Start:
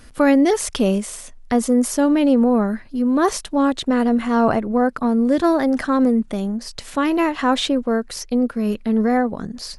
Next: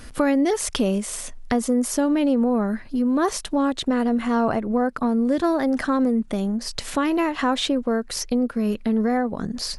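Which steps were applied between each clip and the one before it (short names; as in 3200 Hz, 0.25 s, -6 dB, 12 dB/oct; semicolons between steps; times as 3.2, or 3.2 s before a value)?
compressor 2:1, threshold -29 dBFS, peak gain reduction 10.5 dB; gain +4.5 dB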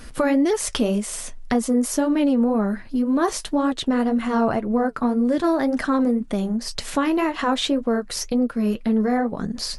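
flange 1.9 Hz, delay 4.1 ms, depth 5.4 ms, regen -53%; gain +4.5 dB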